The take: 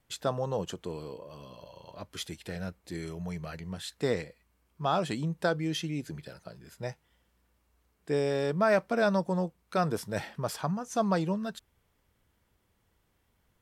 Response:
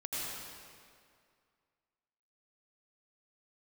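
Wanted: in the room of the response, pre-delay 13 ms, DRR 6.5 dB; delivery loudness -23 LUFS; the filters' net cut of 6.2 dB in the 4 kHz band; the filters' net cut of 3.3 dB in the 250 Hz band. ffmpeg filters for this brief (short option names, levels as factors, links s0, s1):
-filter_complex "[0:a]equalizer=f=250:t=o:g=-5,equalizer=f=4000:t=o:g=-8,asplit=2[s0][s1];[1:a]atrim=start_sample=2205,adelay=13[s2];[s1][s2]afir=irnorm=-1:irlink=0,volume=0.316[s3];[s0][s3]amix=inputs=2:normalize=0,volume=3.16"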